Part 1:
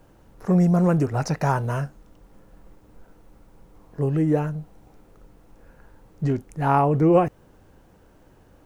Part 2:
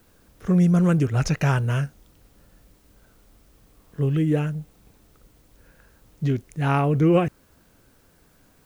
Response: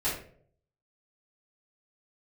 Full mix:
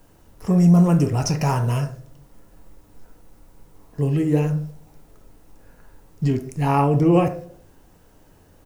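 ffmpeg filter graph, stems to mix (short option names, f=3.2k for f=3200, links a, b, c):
-filter_complex "[0:a]highshelf=f=3.9k:g=10.5,volume=-3dB,asplit=3[a][b][c];[b]volume=-12dB[d];[1:a]equalizer=f=5.4k:w=4:g=11.5,alimiter=limit=-18.5dB:level=0:latency=1,adelay=0.4,volume=-1.5dB[e];[c]apad=whole_len=381872[f];[e][f]sidechaingate=range=-33dB:threshold=-45dB:ratio=16:detection=peak[g];[2:a]atrim=start_sample=2205[h];[d][h]afir=irnorm=-1:irlink=0[i];[a][g][i]amix=inputs=3:normalize=0"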